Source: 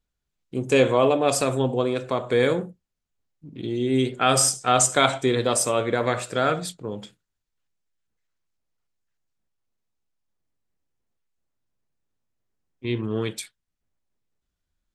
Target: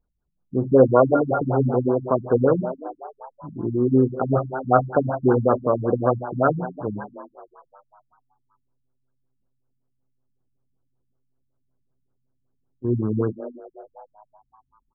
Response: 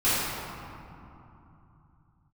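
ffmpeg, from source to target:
-filter_complex "[0:a]asplit=7[link_01][link_02][link_03][link_04][link_05][link_06][link_07];[link_02]adelay=267,afreqshift=130,volume=-13.5dB[link_08];[link_03]adelay=534,afreqshift=260,volume=-18.5dB[link_09];[link_04]adelay=801,afreqshift=390,volume=-23.6dB[link_10];[link_05]adelay=1068,afreqshift=520,volume=-28.6dB[link_11];[link_06]adelay=1335,afreqshift=650,volume=-33.6dB[link_12];[link_07]adelay=1602,afreqshift=780,volume=-38.7dB[link_13];[link_01][link_08][link_09][link_10][link_11][link_12][link_13]amix=inputs=7:normalize=0,asettb=1/sr,asplit=3[link_14][link_15][link_16];[link_14]atrim=end=0.944[link_17];[link_15]atrim=start=0.94:end=1.44,asetpts=PTS-STARTPTS,afade=type=in:duration=0.004:curve=qsin,afade=type=out:start_time=0.496:duration=0.004:curve=qsin,aeval=exprs='val(0)+0.0447*sin(2*PI*1400*n/s)':channel_layout=same[link_18];[link_16]atrim=start=1.436[link_19];[link_17][link_18]acrossfade=duration=0.004:curve1=hsin:curve2=qsin[link_20];[link_20][link_19]acrossfade=duration=0.004:curve1=qsin:curve2=hsin,afftfilt=real='re*lt(b*sr/1024,230*pow(1700/230,0.5+0.5*sin(2*PI*5.3*pts/sr)))':imag='im*lt(b*sr/1024,230*pow(1700/230,0.5+0.5*sin(2*PI*5.3*pts/sr)))':win_size=1024:overlap=0.75,volume=5dB"

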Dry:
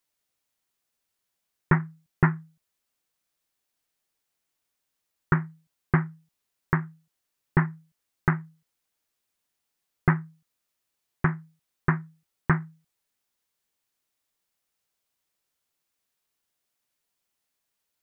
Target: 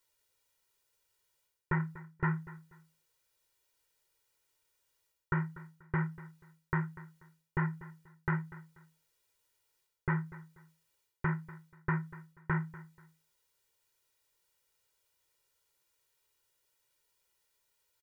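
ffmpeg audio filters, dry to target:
ffmpeg -i in.wav -af "areverse,acompressor=threshold=-30dB:ratio=10,areverse,aecho=1:1:2.1:0.81,aecho=1:1:242|484:0.133|0.036,volume=1dB" out.wav

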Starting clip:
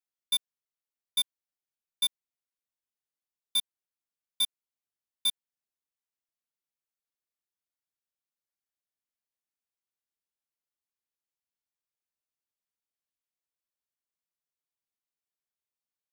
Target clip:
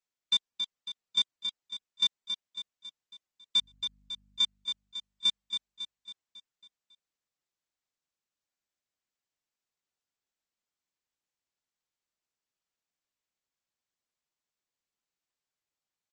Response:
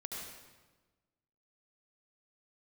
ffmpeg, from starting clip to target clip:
-filter_complex "[0:a]asettb=1/sr,asplit=3[link_01][link_02][link_03];[link_01]atrim=end=3.564[link_04];[link_02]atrim=start=3.56:end=4.41,asetpts=PTS-STARTPTS,afade=type=in:duration=0.004:curve=qsin,afade=type=out:start_time=0.846:duration=0.004:curve=qsin,aeval=exprs='val(0)+0.000501*(sin(2*PI*50*n/s)+sin(2*PI*2*50*n/s)/2+sin(2*PI*3*50*n/s)/3+sin(2*PI*4*50*n/s)/4+sin(2*PI*5*50*n/s)/5)':channel_layout=same[link_05];[link_03]atrim=start=4.406[link_06];[link_04][link_05]acrossfade=duration=0.004:curve1=hsin:curve2=qsin[link_07];[link_07][link_06]acrossfade=duration=0.004:curve1=qsin:curve2=hsin,aecho=1:1:275|550|825|1100|1375|1650:0.422|0.215|0.11|0.0559|0.0285|0.0145,volume=2.5dB" -ar 44100 -c:a libmp3lame -b:a 32k

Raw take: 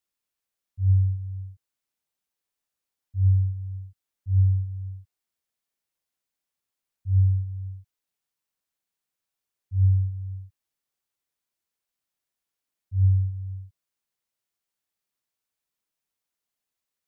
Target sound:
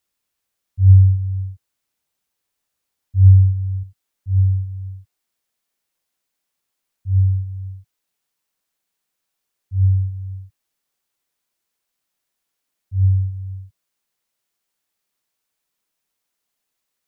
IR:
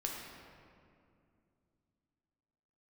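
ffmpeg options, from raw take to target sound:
-af "asetnsamples=nb_out_samples=441:pad=0,asendcmd='3.83 equalizer g -4.5',equalizer=frequency=79:width_type=o:width=1.4:gain=3,volume=8dB"

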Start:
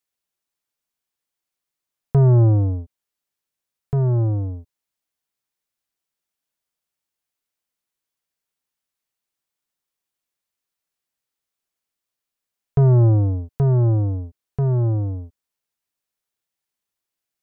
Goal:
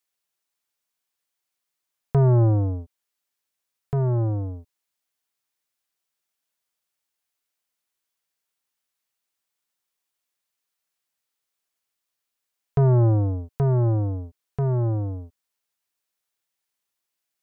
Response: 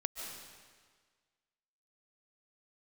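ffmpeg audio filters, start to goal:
-af "lowshelf=frequency=420:gain=-7,volume=2.5dB"

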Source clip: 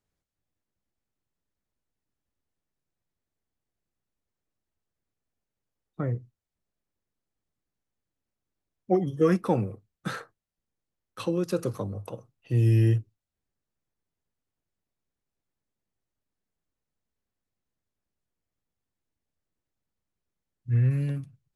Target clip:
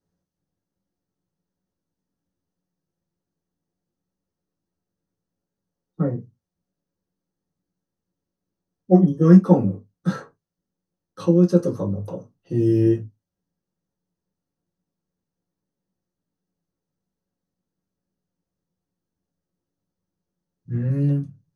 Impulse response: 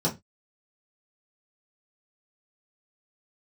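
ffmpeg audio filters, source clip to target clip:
-filter_complex "[1:a]atrim=start_sample=2205,atrim=end_sample=4410,asetrate=48510,aresample=44100[link_01];[0:a][link_01]afir=irnorm=-1:irlink=0,volume=-8.5dB"

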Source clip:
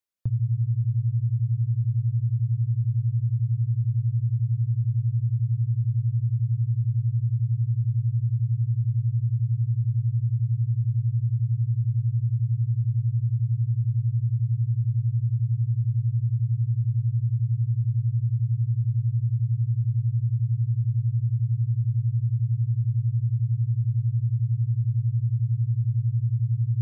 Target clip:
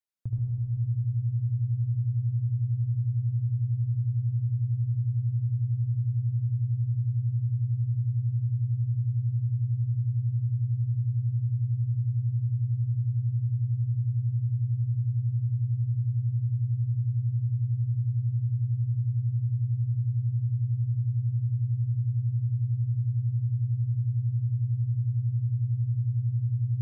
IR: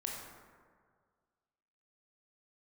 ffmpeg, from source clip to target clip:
-filter_complex "[0:a]asplit=2[link_01][link_02];[1:a]atrim=start_sample=2205,asetrate=29547,aresample=44100,adelay=74[link_03];[link_02][link_03]afir=irnorm=-1:irlink=0,volume=-3dB[link_04];[link_01][link_04]amix=inputs=2:normalize=0,volume=-7dB"

